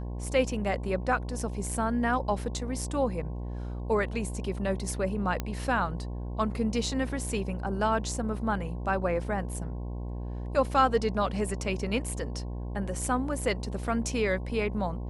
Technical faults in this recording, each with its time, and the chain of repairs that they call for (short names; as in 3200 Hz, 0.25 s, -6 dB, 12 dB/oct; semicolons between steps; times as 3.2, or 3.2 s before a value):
buzz 60 Hz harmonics 18 -35 dBFS
5.4 pop -16 dBFS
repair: de-click; de-hum 60 Hz, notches 18